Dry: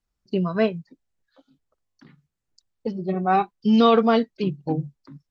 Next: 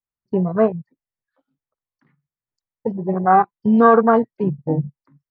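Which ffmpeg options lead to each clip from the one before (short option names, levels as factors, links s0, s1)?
-af "dynaudnorm=f=120:g=3:m=1.58,afwtdn=0.0794,equalizer=f=125:t=o:w=1:g=10,equalizer=f=250:t=o:w=1:g=3,equalizer=f=500:t=o:w=1:g=6,equalizer=f=1000:t=o:w=1:g=10,equalizer=f=2000:t=o:w=1:g=11,equalizer=f=4000:t=o:w=1:g=-6,volume=0.447"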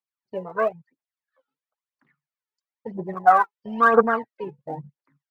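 -af "bandpass=f=1800:t=q:w=0.58:csg=0,aphaser=in_gain=1:out_gain=1:delay=2.4:decay=0.72:speed=1:type=triangular,volume=0.841"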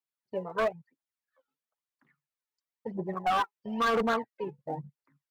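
-af "alimiter=limit=0.251:level=0:latency=1:release=16,asoftclip=type=hard:threshold=0.1,volume=0.708"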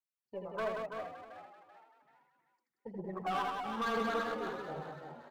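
-filter_complex "[0:a]asplit=2[s0][s1];[s1]aecho=0:1:81|180|334|407|647:0.631|0.596|0.473|0.15|0.106[s2];[s0][s2]amix=inputs=2:normalize=0,aeval=exprs='0.168*(cos(1*acos(clip(val(0)/0.168,-1,1)))-cos(1*PI/2))+0.00266*(cos(6*acos(clip(val(0)/0.168,-1,1)))-cos(6*PI/2))':c=same,asplit=2[s3][s4];[s4]asplit=4[s5][s6][s7][s8];[s5]adelay=386,afreqshift=83,volume=0.282[s9];[s6]adelay=772,afreqshift=166,volume=0.107[s10];[s7]adelay=1158,afreqshift=249,volume=0.0407[s11];[s8]adelay=1544,afreqshift=332,volume=0.0155[s12];[s9][s10][s11][s12]amix=inputs=4:normalize=0[s13];[s3][s13]amix=inputs=2:normalize=0,volume=0.355"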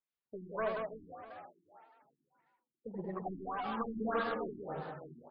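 -af "afftfilt=real='re*lt(b*sr/1024,370*pow(5200/370,0.5+0.5*sin(2*PI*1.7*pts/sr)))':imag='im*lt(b*sr/1024,370*pow(5200/370,0.5+0.5*sin(2*PI*1.7*pts/sr)))':win_size=1024:overlap=0.75,volume=1.12"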